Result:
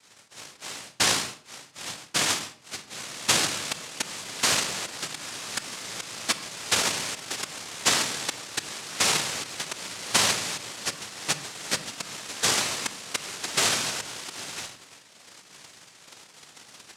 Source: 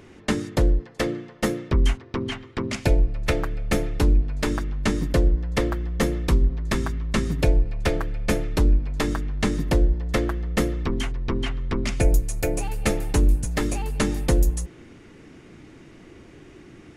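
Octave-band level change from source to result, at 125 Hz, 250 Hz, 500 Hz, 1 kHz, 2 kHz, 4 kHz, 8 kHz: -20.0, -14.5, -10.0, +0.5, +2.5, +9.5, +10.5 dB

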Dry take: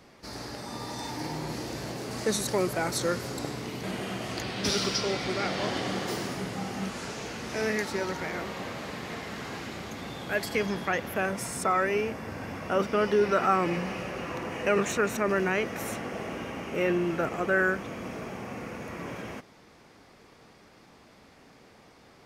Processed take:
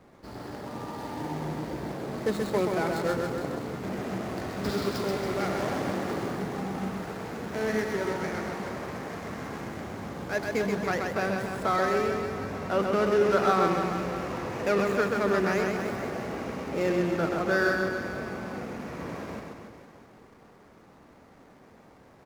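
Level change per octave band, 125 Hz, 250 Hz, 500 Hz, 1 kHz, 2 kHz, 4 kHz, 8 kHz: +1.5, +2.0, +2.0, +1.0, -1.0, -6.0, -8.0 dB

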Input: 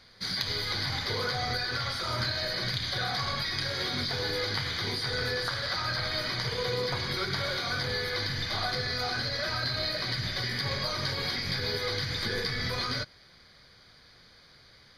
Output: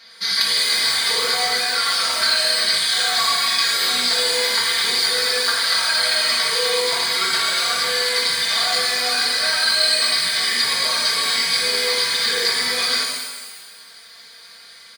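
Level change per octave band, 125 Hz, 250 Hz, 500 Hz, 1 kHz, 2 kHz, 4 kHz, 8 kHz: under -10 dB, -0.5 dB, +7.5 dB, +10.5 dB, +11.5 dB, +14.0 dB, +22.0 dB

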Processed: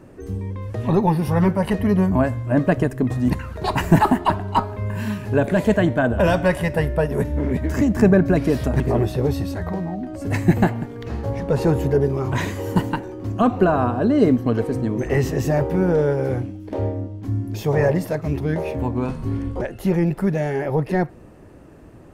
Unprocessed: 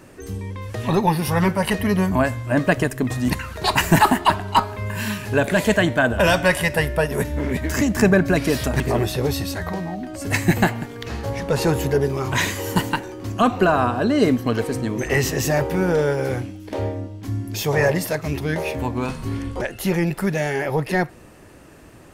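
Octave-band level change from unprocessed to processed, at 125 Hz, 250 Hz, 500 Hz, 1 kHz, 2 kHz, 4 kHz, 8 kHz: +2.5, +2.0, +0.5, -2.0, -6.5, -9.5, -11.0 dB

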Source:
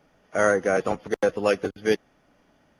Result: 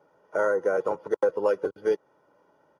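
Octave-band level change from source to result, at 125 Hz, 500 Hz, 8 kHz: under -10 dB, -1.0 dB, under -15 dB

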